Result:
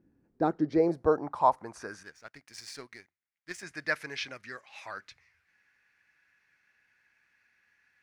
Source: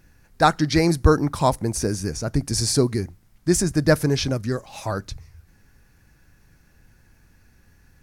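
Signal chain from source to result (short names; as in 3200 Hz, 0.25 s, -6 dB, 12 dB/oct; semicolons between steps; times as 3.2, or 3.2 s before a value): band-pass sweep 290 Hz -> 2100 Hz, 0.26–2.33; 2.03–3.63 power-law curve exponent 1.4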